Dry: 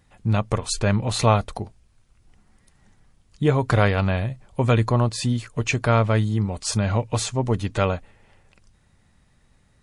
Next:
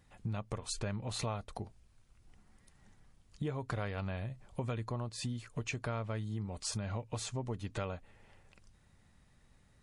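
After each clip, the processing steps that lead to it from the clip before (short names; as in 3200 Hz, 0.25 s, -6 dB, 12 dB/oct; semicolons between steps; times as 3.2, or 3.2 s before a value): compressor 4:1, threshold -31 dBFS, peak gain reduction 15.5 dB; gain -5.5 dB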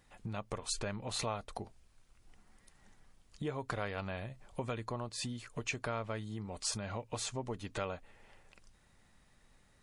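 bell 96 Hz -8 dB 2.5 oct; gain +2.5 dB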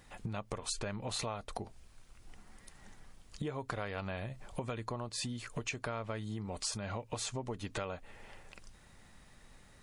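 compressor 3:1, threshold -45 dBFS, peak gain reduction 10 dB; gain +7.5 dB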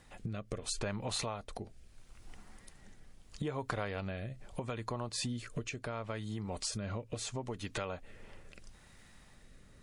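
rotary speaker horn 0.75 Hz; gain +2.5 dB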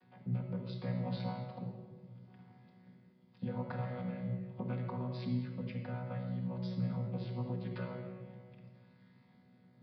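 chord vocoder bare fifth, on B2; shoebox room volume 1600 m³, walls mixed, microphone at 1.8 m; downsampling 11025 Hz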